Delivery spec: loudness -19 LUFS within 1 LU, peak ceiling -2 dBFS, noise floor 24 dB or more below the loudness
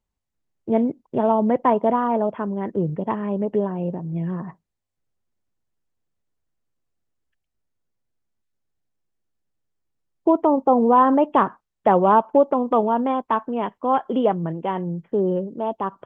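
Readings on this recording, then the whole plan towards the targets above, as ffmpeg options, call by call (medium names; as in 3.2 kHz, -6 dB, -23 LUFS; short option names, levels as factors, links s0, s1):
loudness -21.0 LUFS; peak level -5.0 dBFS; loudness target -19.0 LUFS
-> -af "volume=1.26"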